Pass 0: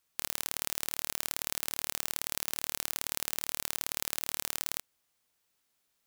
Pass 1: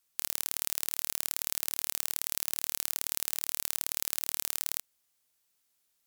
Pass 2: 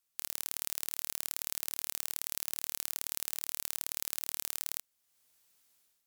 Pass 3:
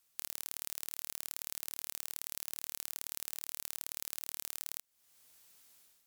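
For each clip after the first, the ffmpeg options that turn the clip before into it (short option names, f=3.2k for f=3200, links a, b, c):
-af "equalizer=f=15k:t=o:w=2.1:g=8,volume=-4.5dB"
-af "dynaudnorm=f=130:g=5:m=11dB,volume=-5.5dB"
-af "acompressor=threshold=-44dB:ratio=3,volume=7dB"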